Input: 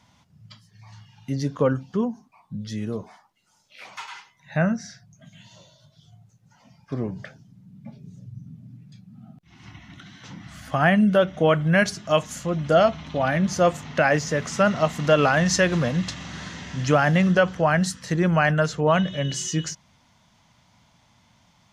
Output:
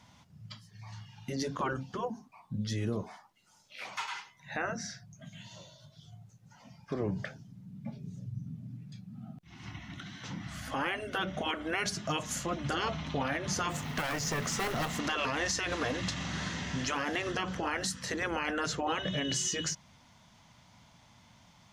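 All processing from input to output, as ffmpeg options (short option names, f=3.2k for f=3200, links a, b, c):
-filter_complex "[0:a]asettb=1/sr,asplit=3[a][b][c];[a]atrim=end=13.704[d];[b]atrim=start=13.7:end=14.99,asetpts=PTS-STARTPTS,afade=t=in:d=0.004:c=qsin,afade=t=out:st=1.286:d=0.004:c=qsin,acrusher=bits=5:mode=log:mix=0:aa=0.000001,aeval=exprs='clip(val(0),-1,0.0376)':c=same[e];[c]atrim=start=14.986[f];[d][e]acrossfade=d=0.004:c1=hsin:c2=qsin[g];[g][f]acrossfade=d=0.004:c1=qsin:c2=hsin,afftfilt=real='re*lt(hypot(re,im),0.355)':imag='im*lt(hypot(re,im),0.355)':win_size=1024:overlap=0.75,alimiter=limit=-22dB:level=0:latency=1:release=96"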